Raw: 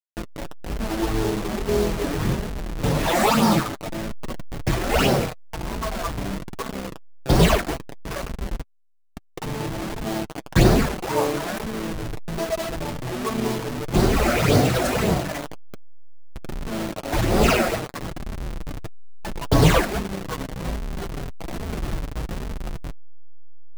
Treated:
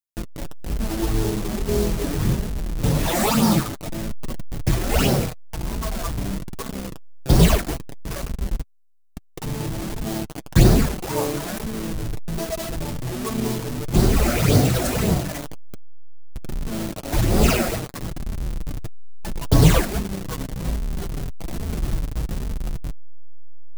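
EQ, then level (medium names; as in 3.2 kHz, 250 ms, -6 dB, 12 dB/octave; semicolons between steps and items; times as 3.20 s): bass shelf 310 Hz +10 dB; treble shelf 4.3 kHz +11 dB; -5.5 dB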